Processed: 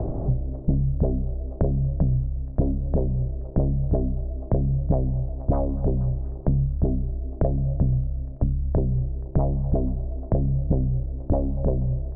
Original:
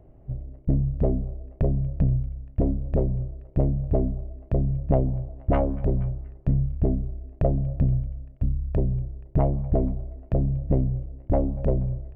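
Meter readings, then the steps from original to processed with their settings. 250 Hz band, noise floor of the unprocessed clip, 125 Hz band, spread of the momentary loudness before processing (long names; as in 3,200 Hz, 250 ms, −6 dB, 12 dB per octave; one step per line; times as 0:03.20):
+0.5 dB, −50 dBFS, +1.5 dB, 8 LU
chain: low-pass filter 1,100 Hz 24 dB per octave
multiband upward and downward compressor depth 100%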